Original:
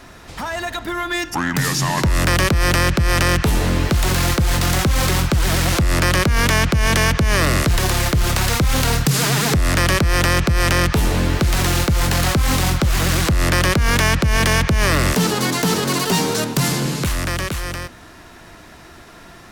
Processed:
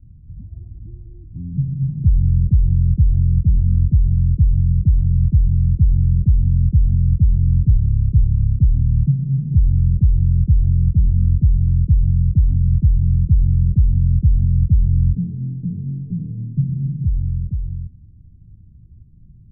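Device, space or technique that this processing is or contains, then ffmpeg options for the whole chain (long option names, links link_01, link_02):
the neighbour's flat through the wall: -af "lowpass=frequency=150:width=0.5412,lowpass=frequency=150:width=1.3066,equalizer=frequency=98:width_type=o:width=0.77:gain=3,volume=3.5dB"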